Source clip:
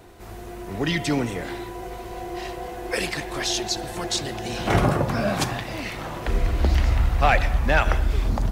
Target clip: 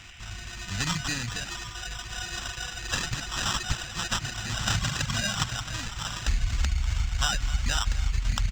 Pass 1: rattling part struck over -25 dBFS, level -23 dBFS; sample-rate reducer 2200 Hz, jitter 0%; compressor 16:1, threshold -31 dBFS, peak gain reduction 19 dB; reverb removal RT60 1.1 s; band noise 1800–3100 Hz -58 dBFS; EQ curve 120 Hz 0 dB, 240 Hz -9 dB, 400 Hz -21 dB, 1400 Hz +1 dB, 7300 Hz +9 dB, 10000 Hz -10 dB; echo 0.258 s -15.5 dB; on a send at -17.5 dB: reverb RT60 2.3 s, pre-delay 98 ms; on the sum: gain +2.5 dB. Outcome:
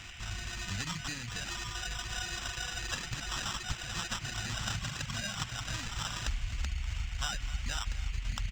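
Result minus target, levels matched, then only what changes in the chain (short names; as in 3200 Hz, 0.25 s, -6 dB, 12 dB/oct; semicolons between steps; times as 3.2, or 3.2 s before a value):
compressor: peak gain reduction +9 dB
change: compressor 16:1, threshold -21.5 dBFS, peak gain reduction 10 dB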